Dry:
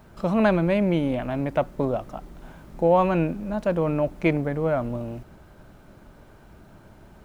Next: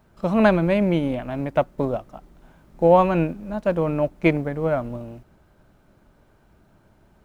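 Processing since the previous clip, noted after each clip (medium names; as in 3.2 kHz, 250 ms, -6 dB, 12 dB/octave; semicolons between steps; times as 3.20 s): upward expansion 1.5:1, over -40 dBFS; trim +4.5 dB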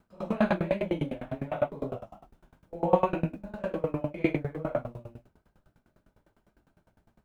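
phase randomisation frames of 200 ms; sawtooth tremolo in dB decaying 9.9 Hz, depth 24 dB; trim -2 dB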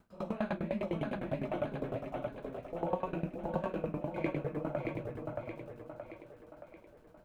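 compression 2.5:1, threshold -36 dBFS, peak gain reduction 13.5 dB; on a send: two-band feedback delay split 300 Hz, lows 325 ms, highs 624 ms, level -3 dB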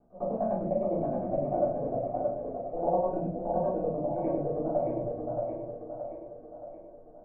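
resonant low-pass 670 Hz, resonance Q 4.5; simulated room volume 210 m³, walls furnished, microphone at 3.5 m; trim -7.5 dB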